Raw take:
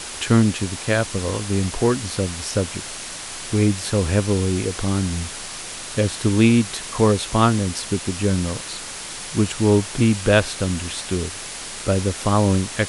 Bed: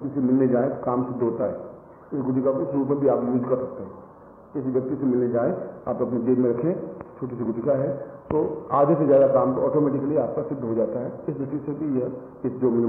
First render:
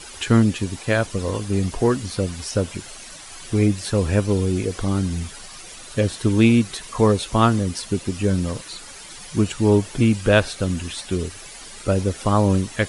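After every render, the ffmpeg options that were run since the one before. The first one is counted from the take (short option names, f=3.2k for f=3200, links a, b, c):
-af "afftdn=nr=11:nf=-33"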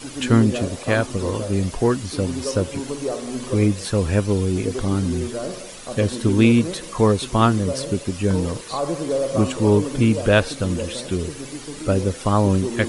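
-filter_complex "[1:a]volume=-6dB[a];[0:a][a]amix=inputs=2:normalize=0"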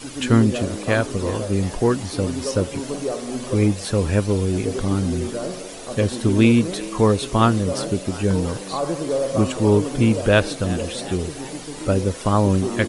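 -filter_complex "[0:a]asplit=7[a][b][c][d][e][f][g];[b]adelay=366,afreqshift=92,volume=-18.5dB[h];[c]adelay=732,afreqshift=184,volume=-22.8dB[i];[d]adelay=1098,afreqshift=276,volume=-27.1dB[j];[e]adelay=1464,afreqshift=368,volume=-31.4dB[k];[f]adelay=1830,afreqshift=460,volume=-35.7dB[l];[g]adelay=2196,afreqshift=552,volume=-40dB[m];[a][h][i][j][k][l][m]amix=inputs=7:normalize=0"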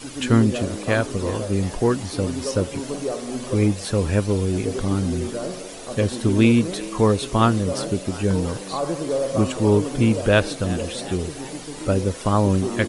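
-af "volume=-1dB"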